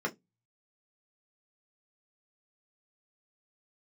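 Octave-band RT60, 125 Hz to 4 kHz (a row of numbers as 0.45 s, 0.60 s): 0.60 s, 0.25 s, 0.20 s, 0.15 s, 0.10 s, 0.15 s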